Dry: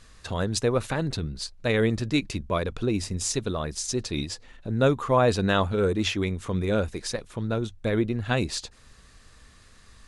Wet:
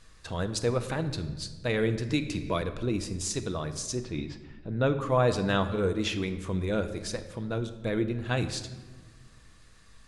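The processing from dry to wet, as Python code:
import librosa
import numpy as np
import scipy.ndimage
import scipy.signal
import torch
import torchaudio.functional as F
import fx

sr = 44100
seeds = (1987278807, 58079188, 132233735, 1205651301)

y = fx.lowpass(x, sr, hz=fx.line((3.94, 2200.0), (5.0, 4100.0)), slope=12, at=(3.94, 5.0), fade=0.02)
y = fx.room_shoebox(y, sr, seeds[0], volume_m3=1100.0, walls='mixed', distance_m=0.62)
y = fx.band_squash(y, sr, depth_pct=70, at=(2.09, 2.62))
y = F.gain(torch.from_numpy(y), -4.5).numpy()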